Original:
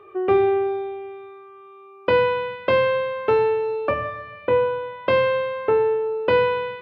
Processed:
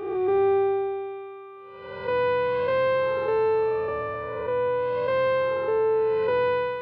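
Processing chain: spectral blur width 462 ms; dynamic bell 2.8 kHz, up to -5 dB, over -49 dBFS, Q 2.1

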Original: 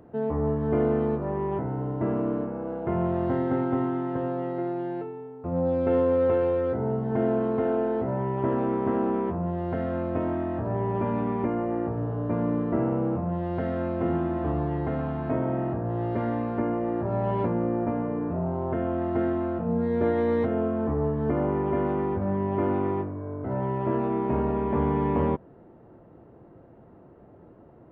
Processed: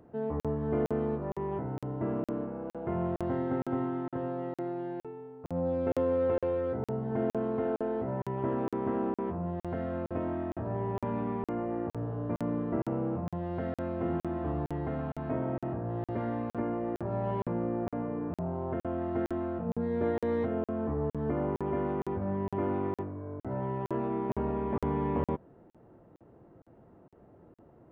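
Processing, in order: crackling interface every 0.46 s, samples 2048, zero, from 0.40 s; trim -5.5 dB

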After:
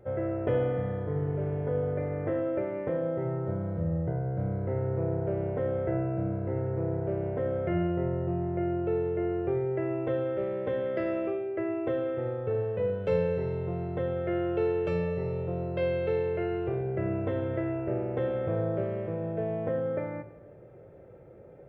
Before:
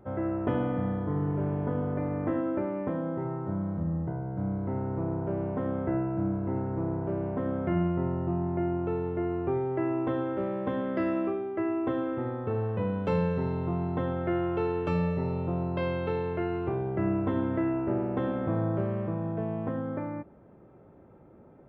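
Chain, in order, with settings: graphic EQ 125/250/500/1000/2000 Hz +4/-11/+11/-10/+5 dB; gain riding 2 s; on a send: reverberation RT60 1.1 s, pre-delay 4 ms, DRR 11 dB; on the sum: trim -2 dB

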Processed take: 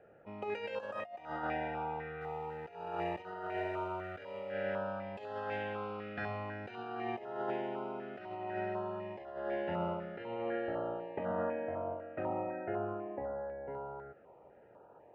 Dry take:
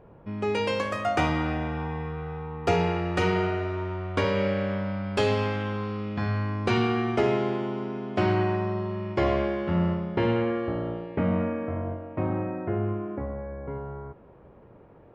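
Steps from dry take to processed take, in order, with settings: 2.21–4.52 s: companding laws mixed up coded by mu; three-band isolator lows -19 dB, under 590 Hz, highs -21 dB, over 2.4 kHz; compressor with a negative ratio -36 dBFS, ratio -0.5; comb of notches 1.1 kHz; step-sequenced notch 4 Hz 970–2300 Hz; trim +1.5 dB

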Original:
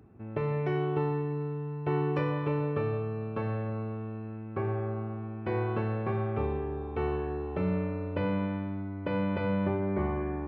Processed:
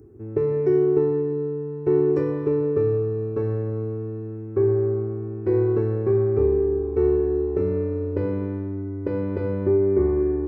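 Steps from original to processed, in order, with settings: FFT filter 110 Hz 0 dB, 180 Hz -11 dB, 400 Hz +9 dB, 620 Hz -12 dB, 1.9 kHz -11 dB, 3.1 kHz -22 dB, 5.9 kHz 0 dB; trim +7 dB

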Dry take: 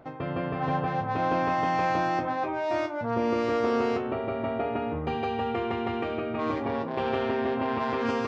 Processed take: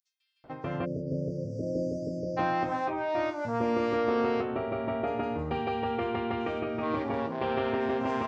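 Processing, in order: bands offset in time highs, lows 440 ms, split 5.7 kHz; spectral selection erased 0.85–2.38 s, 660–4500 Hz; trim -1.5 dB

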